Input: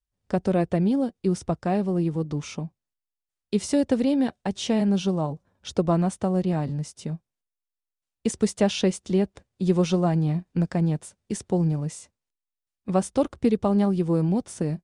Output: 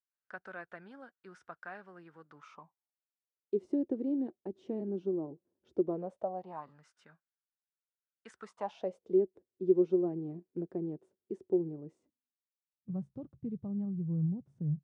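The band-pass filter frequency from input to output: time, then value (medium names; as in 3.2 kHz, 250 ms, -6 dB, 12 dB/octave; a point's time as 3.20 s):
band-pass filter, Q 6.3
2.29 s 1.5 kHz
3.64 s 350 Hz
5.81 s 350 Hz
6.87 s 1.5 kHz
8.36 s 1.5 kHz
9.18 s 370 Hz
11.84 s 370 Hz
12.91 s 140 Hz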